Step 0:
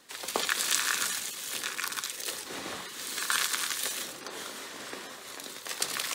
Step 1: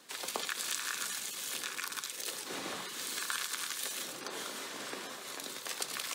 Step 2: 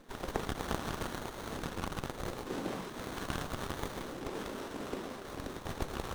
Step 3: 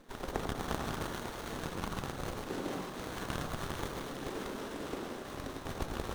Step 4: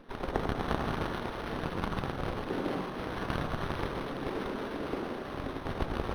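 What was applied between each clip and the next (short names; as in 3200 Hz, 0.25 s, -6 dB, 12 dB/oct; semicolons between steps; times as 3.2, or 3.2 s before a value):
HPF 110 Hz 24 dB/oct; compressor 2.5:1, threshold -36 dBFS, peak gain reduction 10.5 dB; notch 1900 Hz, Q 22
low shelf 450 Hz +11 dB; running maximum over 17 samples
split-band echo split 1400 Hz, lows 95 ms, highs 0.45 s, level -6 dB; gain -1 dB
decimation joined by straight lines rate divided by 6×; gain +5 dB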